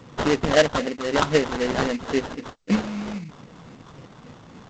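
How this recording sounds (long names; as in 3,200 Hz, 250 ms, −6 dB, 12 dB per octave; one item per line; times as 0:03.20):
phaser sweep stages 2, 3.8 Hz, lowest notch 460–1,400 Hz
tremolo saw up 3.2 Hz, depth 30%
aliases and images of a low sample rate 2,400 Hz, jitter 20%
G.722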